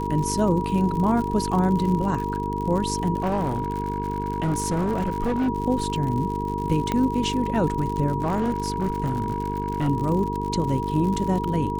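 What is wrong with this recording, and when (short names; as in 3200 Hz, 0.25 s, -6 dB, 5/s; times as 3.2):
buzz 50 Hz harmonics 9 -29 dBFS
crackle 85/s -29 dBFS
tone 960 Hz -28 dBFS
3.2–5.49 clipped -19.5 dBFS
6.92 pop -11 dBFS
8.22–9.89 clipped -19 dBFS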